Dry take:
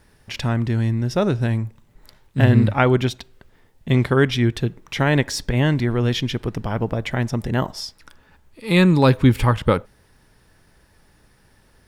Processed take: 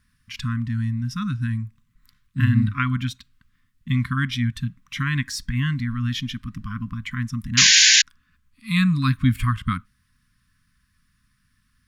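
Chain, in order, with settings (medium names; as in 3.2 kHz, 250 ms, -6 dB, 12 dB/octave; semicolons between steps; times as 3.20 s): painted sound noise, 7.57–8.02 s, 1.5–7.2 kHz -10 dBFS; brick-wall FIR band-stop 280–1000 Hz; spectral noise reduction 6 dB; trim -3.5 dB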